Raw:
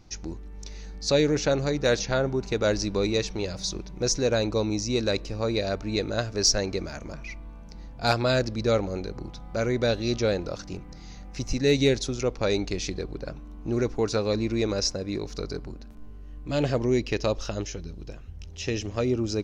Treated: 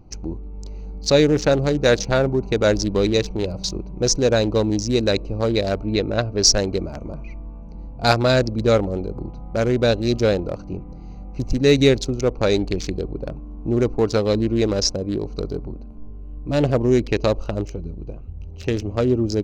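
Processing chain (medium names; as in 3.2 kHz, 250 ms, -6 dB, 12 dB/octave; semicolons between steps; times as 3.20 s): local Wiener filter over 25 samples; 5.83–6.43 s: low-pass 4.5 kHz 12 dB/octave; trim +7 dB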